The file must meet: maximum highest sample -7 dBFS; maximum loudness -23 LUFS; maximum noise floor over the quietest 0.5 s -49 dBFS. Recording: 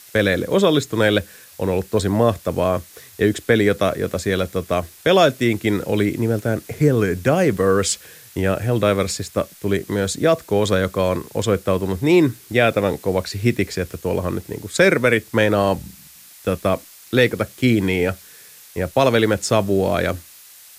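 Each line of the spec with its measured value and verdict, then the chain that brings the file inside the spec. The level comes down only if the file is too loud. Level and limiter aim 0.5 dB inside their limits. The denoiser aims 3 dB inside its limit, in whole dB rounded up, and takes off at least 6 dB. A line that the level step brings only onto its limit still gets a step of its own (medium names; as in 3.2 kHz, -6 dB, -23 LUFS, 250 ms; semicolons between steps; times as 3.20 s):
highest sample -3.0 dBFS: fail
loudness -19.5 LUFS: fail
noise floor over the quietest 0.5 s -45 dBFS: fail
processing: noise reduction 6 dB, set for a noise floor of -45 dBFS; trim -4 dB; peak limiter -7.5 dBFS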